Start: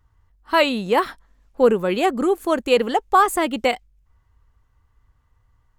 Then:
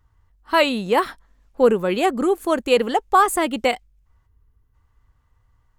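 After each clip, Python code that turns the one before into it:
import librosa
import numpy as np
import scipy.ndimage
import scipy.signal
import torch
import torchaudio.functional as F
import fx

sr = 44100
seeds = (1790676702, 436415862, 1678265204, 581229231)

y = fx.spec_box(x, sr, start_s=4.27, length_s=0.47, low_hz=490.0, high_hz=9700.0, gain_db=-9)
y = fx.dynamic_eq(y, sr, hz=9400.0, q=2.3, threshold_db=-47.0, ratio=4.0, max_db=4)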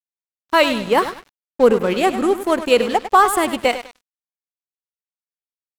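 y = fx.echo_feedback(x, sr, ms=100, feedback_pct=44, wet_db=-10.5)
y = np.sign(y) * np.maximum(np.abs(y) - 10.0 ** (-34.0 / 20.0), 0.0)
y = y * 10.0 ** (3.0 / 20.0)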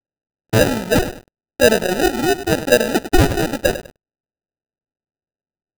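y = fx.sample_hold(x, sr, seeds[0], rate_hz=1100.0, jitter_pct=0)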